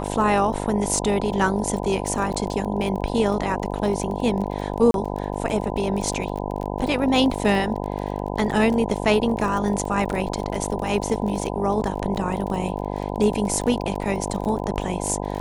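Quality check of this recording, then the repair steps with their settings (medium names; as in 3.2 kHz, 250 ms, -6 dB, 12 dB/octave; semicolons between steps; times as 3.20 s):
buzz 50 Hz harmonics 20 -28 dBFS
crackle 25 per s -28 dBFS
4.91–4.94 s: dropout 32 ms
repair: de-click; de-hum 50 Hz, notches 20; interpolate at 4.91 s, 32 ms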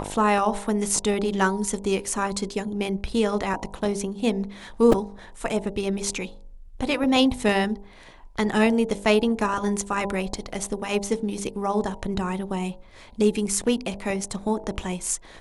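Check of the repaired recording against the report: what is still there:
nothing left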